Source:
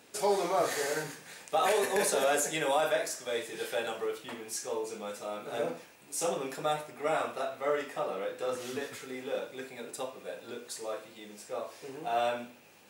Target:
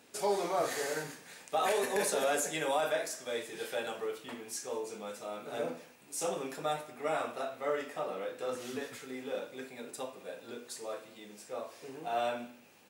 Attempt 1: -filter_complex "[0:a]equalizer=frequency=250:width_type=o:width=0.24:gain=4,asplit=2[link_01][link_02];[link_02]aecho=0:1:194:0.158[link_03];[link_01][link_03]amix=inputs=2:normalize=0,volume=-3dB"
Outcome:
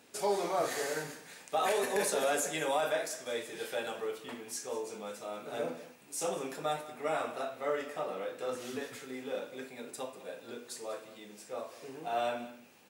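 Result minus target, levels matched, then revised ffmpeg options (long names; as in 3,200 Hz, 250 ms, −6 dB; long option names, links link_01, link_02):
echo-to-direct +8 dB
-filter_complex "[0:a]equalizer=frequency=250:width_type=o:width=0.24:gain=4,asplit=2[link_01][link_02];[link_02]aecho=0:1:194:0.0631[link_03];[link_01][link_03]amix=inputs=2:normalize=0,volume=-3dB"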